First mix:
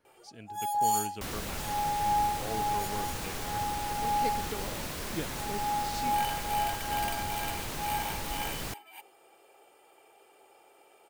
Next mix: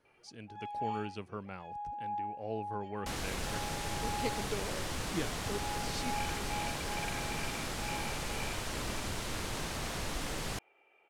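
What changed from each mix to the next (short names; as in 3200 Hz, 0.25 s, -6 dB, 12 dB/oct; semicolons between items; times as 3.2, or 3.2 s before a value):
first sound: add ladder low-pass 2700 Hz, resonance 65%; second sound: entry +1.85 s; master: add LPF 10000 Hz 12 dB/oct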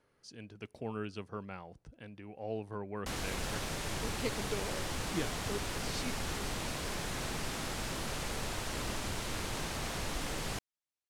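first sound: muted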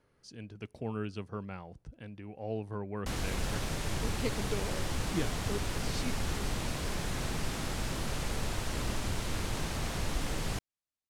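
master: add low shelf 220 Hz +7 dB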